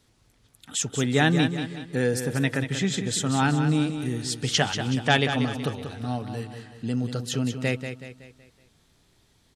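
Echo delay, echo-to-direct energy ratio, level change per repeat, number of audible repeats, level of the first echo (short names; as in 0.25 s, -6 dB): 0.187 s, -7.5 dB, -7.0 dB, 4, -8.5 dB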